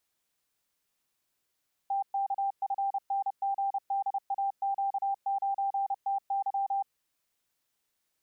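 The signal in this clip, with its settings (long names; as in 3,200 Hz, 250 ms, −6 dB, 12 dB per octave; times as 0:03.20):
Morse code "TKFNGDAQ9TY" 30 words per minute 790 Hz −26.5 dBFS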